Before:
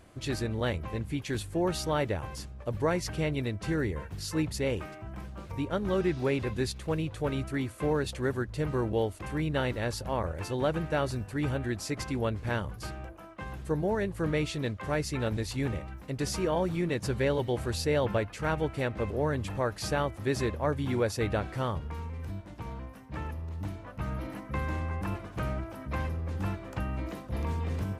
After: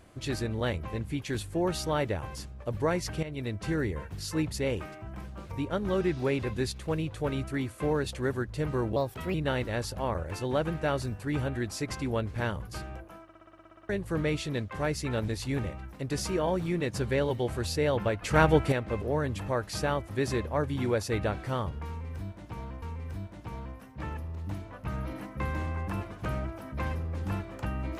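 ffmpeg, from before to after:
-filter_complex "[0:a]asplit=18[a][b][c][d][e][f][g][h][i][j][k][l][m][n][o][p][q][r];[a]atrim=end=3.23,asetpts=PTS-STARTPTS,afade=t=out:st=3.226:d=0.004:c=hsin:silence=0.223872[s];[b]atrim=start=3.23:end=8.964,asetpts=PTS-STARTPTS,afade=t=in:d=0.31:silence=0.223872[t];[c]atrim=start=8.96:end=9.43,asetpts=PTS-STARTPTS,asetrate=54243,aresample=44100,atrim=end_sample=16851,asetpts=PTS-STARTPTS[u];[d]atrim=start=9.426:end=13.382[v];[e]atrim=start=13.318:end=13.382[w];[f]atrim=start=13.318:end=13.382[x];[g]atrim=start=13.318:end=13.382[y];[h]atrim=start=13.318:end=13.382[z];[i]atrim=start=13.318:end=13.382[aa];[j]atrim=start=13.318:end=13.382[ab];[k]atrim=start=13.318:end=13.382[ac];[l]atrim=start=13.318:end=13.382[ad];[m]atrim=start=13.318:end=13.382[ae];[n]atrim=start=13.318:end=13.382[af];[o]atrim=start=13.978:end=18.312[ag];[p]atrim=start=18.308:end=18.812,asetpts=PTS-STARTPTS,volume=8dB[ah];[q]atrim=start=18.808:end=22.912[ai];[r]atrim=start=21.958[aj];[s][t]concat=n=2:v=0:a=1[ak];[ak][u]acrossfade=d=0.004:c1=hsin:c2=hsin[al];[al][v]acrossfade=d=0.004:c1=hsin:c2=hsin[am];[am][w]acrossfade=d=0.004:c1=hsin:c2=hsin[an];[an][x]acrossfade=d=0.004:c1=hsin:c2=hsin[ao];[ao][y]acrossfade=d=0.004:c1=hsin:c2=hsin[ap];[ap][z]acrossfade=d=0.004:c1=hsin:c2=hsin[aq];[aq][aa]acrossfade=d=0.004:c1=hsin:c2=hsin[ar];[ar][ab]acrossfade=d=0.004:c1=hsin:c2=hsin[as];[as][ac]acrossfade=d=0.004:c1=hsin:c2=hsin[at];[at][ad]acrossfade=d=0.004:c1=hsin:c2=hsin[au];[au][ae]acrossfade=d=0.004:c1=hsin:c2=hsin[av];[av][af]acrossfade=d=0.004:c1=hsin:c2=hsin[aw];[aw][ag]acrossfade=d=0.004:c1=hsin:c2=hsin[ax];[ax][ah]acrossfade=d=0.004:c1=hsin:c2=hsin[ay];[ay][ai]acrossfade=d=0.004:c1=hsin:c2=hsin[az];[az][aj]acrossfade=d=0.004:c1=hsin:c2=hsin"

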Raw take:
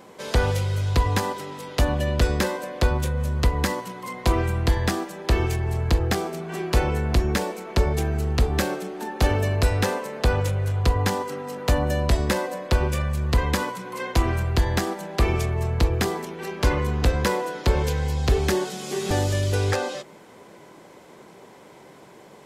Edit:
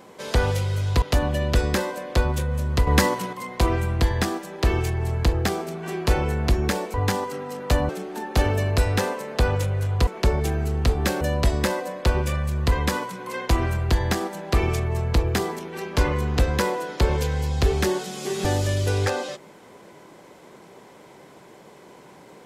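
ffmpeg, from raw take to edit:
-filter_complex "[0:a]asplit=8[a][b][c][d][e][f][g][h];[a]atrim=end=1.022[i];[b]atrim=start=1.678:end=3.532[j];[c]atrim=start=3.528:end=3.992,asetpts=PTS-STARTPTS,volume=6dB[k];[d]atrim=start=3.988:end=7.602[l];[e]atrim=start=10.918:end=11.872[m];[f]atrim=start=8.738:end=10.922[n];[g]atrim=start=7.598:end=8.742[o];[h]atrim=start=11.868[p];[i][j]acrossfade=d=0.004:c1=hsin:c2=hsin[q];[q][k]acrossfade=d=0.004:c1=hsin:c2=hsin[r];[r][l]acrossfade=d=0.004:c1=hsin:c2=hsin[s];[s][m]acrossfade=d=0.004:c1=hsin:c2=hsin[t];[t][n]acrossfade=d=0.004:c1=hsin:c2=hsin[u];[u][o]acrossfade=d=0.004:c1=hsin:c2=hsin[v];[v][p]acrossfade=d=0.004:c1=hsin:c2=hsin"

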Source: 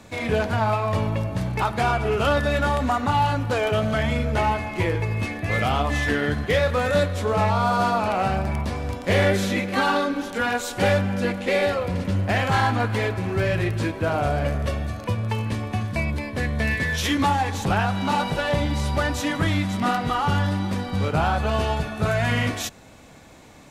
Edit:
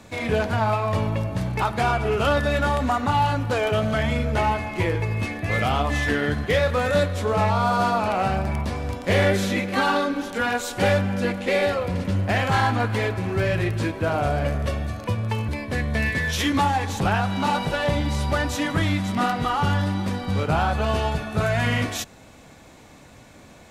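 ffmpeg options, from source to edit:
-filter_complex "[0:a]asplit=2[a][b];[a]atrim=end=15.482[c];[b]atrim=start=16.128[d];[c][d]acrossfade=d=0.004:c1=hsin:c2=hsin"

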